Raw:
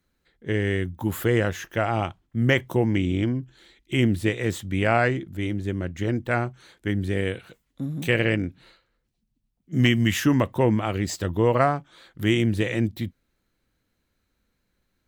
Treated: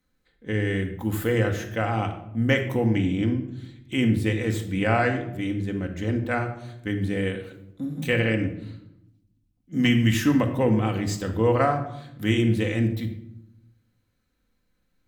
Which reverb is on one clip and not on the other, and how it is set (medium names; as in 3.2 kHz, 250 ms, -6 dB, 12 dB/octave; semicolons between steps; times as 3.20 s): simulated room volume 2100 m³, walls furnished, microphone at 2 m; trim -3 dB